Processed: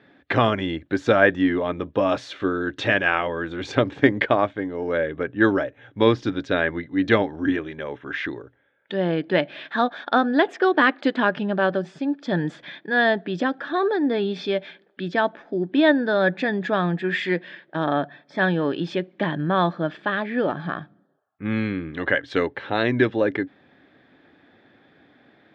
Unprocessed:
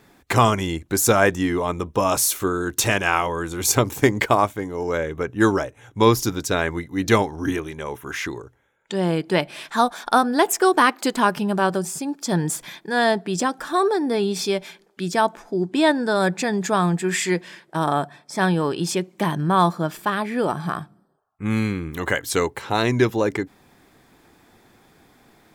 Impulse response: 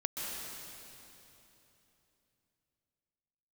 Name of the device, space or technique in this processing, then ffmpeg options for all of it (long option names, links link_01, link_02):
guitar cabinet: -af "highpass=92,equalizer=frequency=280:width_type=q:width=4:gain=7,equalizer=frequency=570:width_type=q:width=4:gain=7,equalizer=frequency=990:width_type=q:width=4:gain=-5,equalizer=frequency=1700:width_type=q:width=4:gain=8,equalizer=frequency=3500:width_type=q:width=4:gain=5,lowpass=frequency=3600:width=0.5412,lowpass=frequency=3600:width=1.3066,volume=-3.5dB"